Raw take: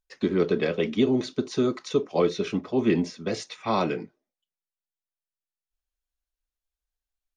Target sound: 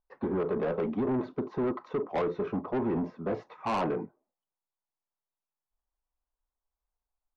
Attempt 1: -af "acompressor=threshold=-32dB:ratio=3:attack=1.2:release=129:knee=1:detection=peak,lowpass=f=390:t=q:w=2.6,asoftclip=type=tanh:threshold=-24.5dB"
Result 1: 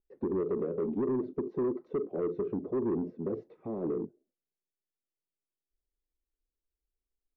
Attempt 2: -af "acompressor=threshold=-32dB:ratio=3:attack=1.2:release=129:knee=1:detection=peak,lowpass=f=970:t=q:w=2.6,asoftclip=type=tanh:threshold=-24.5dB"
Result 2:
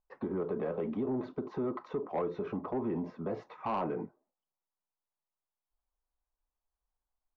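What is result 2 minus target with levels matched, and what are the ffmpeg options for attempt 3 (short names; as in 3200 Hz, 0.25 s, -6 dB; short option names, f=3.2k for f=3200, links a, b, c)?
compressor: peak gain reduction +7.5 dB
-af "acompressor=threshold=-20.5dB:ratio=3:attack=1.2:release=129:knee=1:detection=peak,lowpass=f=970:t=q:w=2.6,asoftclip=type=tanh:threshold=-24.5dB"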